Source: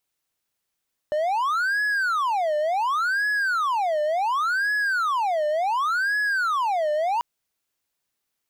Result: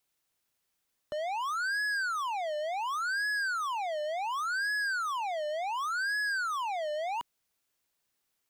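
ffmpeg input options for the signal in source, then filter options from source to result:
-f lavfi -i "aevalsrc='0.119*(1-4*abs(mod((1144.5*t-545.5/(2*PI*0.69)*sin(2*PI*0.69*t))+0.25,1)-0.5))':d=6.09:s=44100"
-filter_complex "[0:a]acrossover=split=380|1600|4700[s0][s1][s2][s3];[s1]alimiter=level_in=2.24:limit=0.0631:level=0:latency=1,volume=0.447[s4];[s0][s4][s2][s3]amix=inputs=4:normalize=0,asoftclip=type=tanh:threshold=0.0335"

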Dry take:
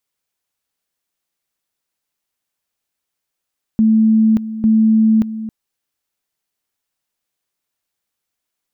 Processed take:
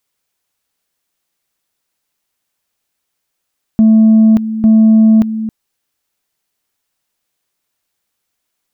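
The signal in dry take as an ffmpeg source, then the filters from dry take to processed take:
-f lavfi -i "aevalsrc='pow(10,(-8.5-13.5*gte(mod(t,0.85),0.58))/20)*sin(2*PI*220*t)':d=1.7:s=44100"
-af "acontrast=68"

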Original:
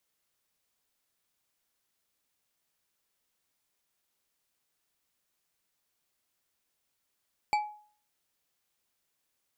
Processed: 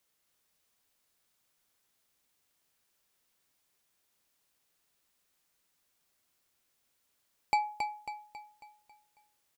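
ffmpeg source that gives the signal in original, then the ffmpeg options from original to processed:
-f lavfi -i "aevalsrc='0.0841*pow(10,-3*t/0.48)*sin(2*PI*841*t)+0.0398*pow(10,-3*t/0.236)*sin(2*PI*2318.6*t)+0.0188*pow(10,-3*t/0.147)*sin(2*PI*4544.8*t)+0.00891*pow(10,-3*t/0.104)*sin(2*PI*7512.7*t)+0.00422*pow(10,-3*t/0.078)*sin(2*PI*11218.9*t)':d=0.89:s=44100"
-filter_complex "[0:a]asplit=2[s0][s1];[s1]asoftclip=type=tanh:threshold=0.0562,volume=0.282[s2];[s0][s2]amix=inputs=2:normalize=0,aecho=1:1:273|546|819|1092|1365|1638:0.501|0.231|0.106|0.0488|0.0224|0.0103"

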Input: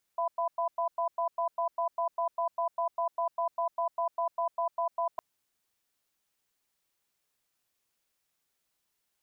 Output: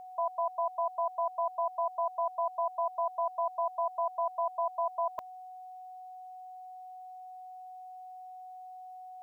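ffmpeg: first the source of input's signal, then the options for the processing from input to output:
-f lavfi -i "aevalsrc='0.0335*(sin(2*PI*680*t)+sin(2*PI*999*t))*clip(min(mod(t,0.2),0.1-mod(t,0.2))/0.005,0,1)':d=5.01:s=44100"
-af "aeval=exprs='val(0)+0.00631*sin(2*PI*740*n/s)':c=same"

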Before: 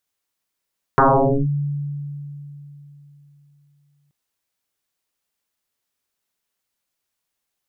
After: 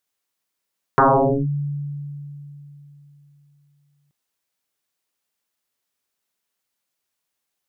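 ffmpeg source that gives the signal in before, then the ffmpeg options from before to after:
-f lavfi -i "aevalsrc='0.355*pow(10,-3*t/3.57)*sin(2*PI*144*t+10*clip(1-t/0.49,0,1)*sin(2*PI*0.94*144*t))':d=3.13:s=44100"
-af "lowshelf=f=65:g=-10.5"

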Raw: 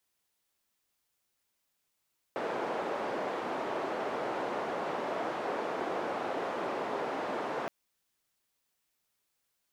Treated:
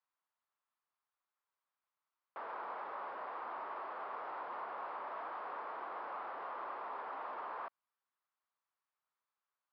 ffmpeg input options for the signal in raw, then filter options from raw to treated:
-f lavfi -i "anoisesrc=c=white:d=5.32:r=44100:seed=1,highpass=f=380,lowpass=f=700,volume=-12.2dB"
-af "aresample=11025,asoftclip=type=hard:threshold=0.02,aresample=44100,bandpass=f=1100:t=q:w=2.6:csg=0"

